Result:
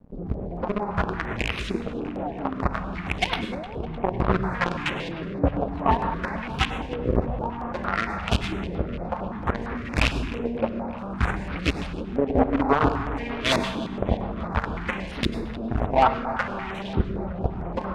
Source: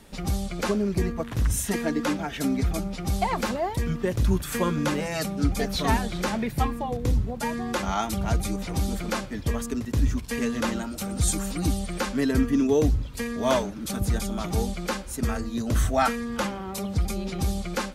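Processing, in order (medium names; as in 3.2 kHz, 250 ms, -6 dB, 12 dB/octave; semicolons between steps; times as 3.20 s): rattle on loud lows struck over -20 dBFS, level -25 dBFS; hum notches 50/100/150/200/250/300/350/400/450 Hz; in parallel at -1 dB: gain riding 2 s; on the sum: companded quantiser 2-bit; LFO low-pass saw up 0.59 Hz 320–3600 Hz; saturation -1.5 dBFS, distortion -13 dB; filtered feedback delay 305 ms, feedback 74%, low-pass 3.3 kHz, level -15.5 dB; on a send at -8 dB: reverberation RT60 0.95 s, pre-delay 88 ms; on the sum: step-sequenced notch 8.8 Hz 350–7400 Hz; trim -8 dB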